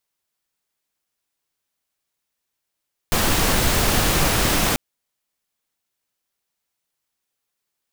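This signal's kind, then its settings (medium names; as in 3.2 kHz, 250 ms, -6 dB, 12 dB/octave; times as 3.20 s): noise pink, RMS -18.5 dBFS 1.64 s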